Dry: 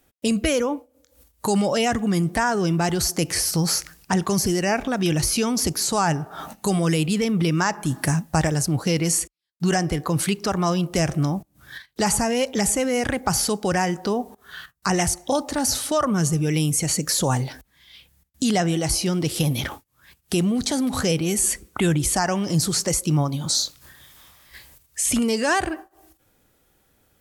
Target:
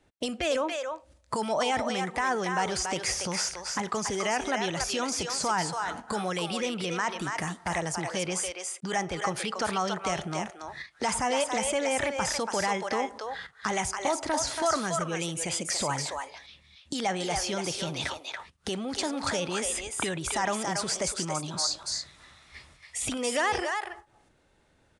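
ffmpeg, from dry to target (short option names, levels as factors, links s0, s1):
-filter_complex "[0:a]highshelf=f=5700:g=-11.5,alimiter=limit=0.168:level=0:latency=1:release=26,acrossover=split=480[s0][s1];[s0]acompressor=threshold=0.0178:ratio=6[s2];[s1]aecho=1:1:307:0.631[s3];[s2][s3]amix=inputs=2:normalize=0,asetrate=48000,aresample=44100,aresample=22050,aresample=44100,volume=0.891"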